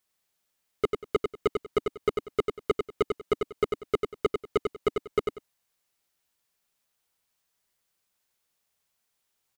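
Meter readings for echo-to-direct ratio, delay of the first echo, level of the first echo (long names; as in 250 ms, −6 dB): −5.0 dB, 95 ms, −5.0 dB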